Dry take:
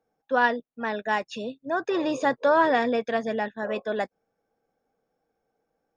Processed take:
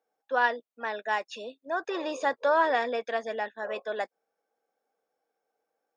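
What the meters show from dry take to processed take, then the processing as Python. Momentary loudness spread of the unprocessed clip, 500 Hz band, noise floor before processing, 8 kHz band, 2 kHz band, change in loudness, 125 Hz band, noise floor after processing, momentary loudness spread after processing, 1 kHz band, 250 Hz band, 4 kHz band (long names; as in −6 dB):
10 LU, −4.0 dB, −80 dBFS, can't be measured, −2.5 dB, −3.5 dB, below −15 dB, −85 dBFS, 11 LU, −3.0 dB, −11.0 dB, −2.5 dB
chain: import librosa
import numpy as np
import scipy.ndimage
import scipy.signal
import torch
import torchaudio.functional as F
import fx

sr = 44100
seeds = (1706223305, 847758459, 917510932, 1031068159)

y = scipy.signal.sosfilt(scipy.signal.butter(2, 450.0, 'highpass', fs=sr, output='sos'), x)
y = y * librosa.db_to_amplitude(-2.5)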